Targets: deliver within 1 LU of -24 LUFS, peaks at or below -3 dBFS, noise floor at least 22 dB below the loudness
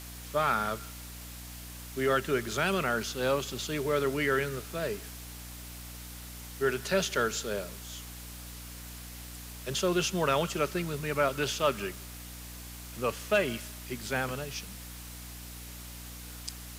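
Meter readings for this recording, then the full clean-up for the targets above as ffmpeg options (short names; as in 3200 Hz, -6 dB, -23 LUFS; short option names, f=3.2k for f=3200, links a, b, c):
hum 60 Hz; harmonics up to 300 Hz; hum level -44 dBFS; noise floor -44 dBFS; noise floor target -53 dBFS; loudness -31.0 LUFS; peak -13.5 dBFS; loudness target -24.0 LUFS
-> -af "bandreject=f=60:t=h:w=4,bandreject=f=120:t=h:w=4,bandreject=f=180:t=h:w=4,bandreject=f=240:t=h:w=4,bandreject=f=300:t=h:w=4"
-af "afftdn=nr=9:nf=-44"
-af "volume=7dB"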